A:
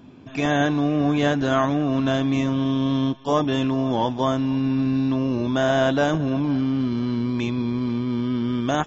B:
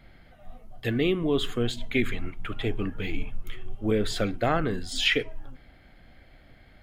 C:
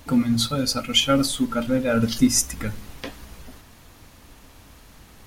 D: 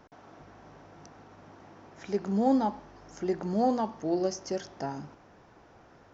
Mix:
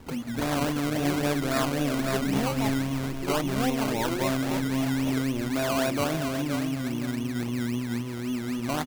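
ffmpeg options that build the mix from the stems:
-filter_complex "[0:a]volume=-7dB,asplit=2[a][b];[b]volume=-7.5dB[c];[1:a]volume=-13dB,asplit=2[d][e];[2:a]acompressor=threshold=-32dB:ratio=2.5,volume=-3dB[f];[3:a]volume=-4dB[g];[e]apad=whole_len=232347[h];[f][h]sidechaincompress=threshold=-41dB:ratio=8:attack=16:release=221[i];[c]aecho=0:1:519|1038|1557|2076:1|0.26|0.0676|0.0176[j];[a][d][i][g][j]amix=inputs=5:normalize=0,acrusher=samples=20:mix=1:aa=0.000001:lfo=1:lforange=12:lforate=3.7"

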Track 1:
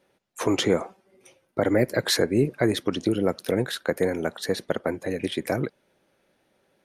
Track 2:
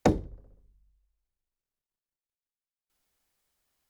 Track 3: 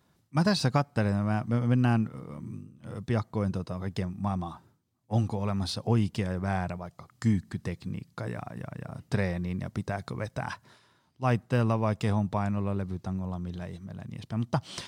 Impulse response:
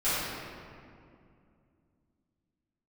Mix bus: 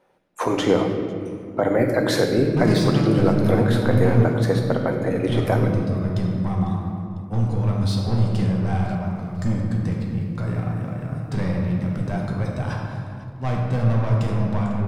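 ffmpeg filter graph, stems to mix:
-filter_complex "[0:a]volume=-8dB,asplit=3[a][b][c];[b]volume=-7.5dB[d];[c]volume=-21.5dB[e];[2:a]asoftclip=type=tanh:threshold=-26.5dB,adelay=2200,volume=-1dB,asplit=3[f][g][h];[g]volume=-8dB[i];[h]volume=-14.5dB[j];[a]equalizer=f=940:t=o:w=2.1:g=15,alimiter=limit=-11.5dB:level=0:latency=1:release=273,volume=0dB[k];[3:a]atrim=start_sample=2205[l];[d][i]amix=inputs=2:normalize=0[m];[m][l]afir=irnorm=-1:irlink=0[n];[e][j]amix=inputs=2:normalize=0,aecho=0:1:500|1000|1500|2000|2500|3000|3500:1|0.47|0.221|0.104|0.0488|0.0229|0.0108[o];[f][k][n][o]amix=inputs=4:normalize=0,lowshelf=f=380:g=6.5"

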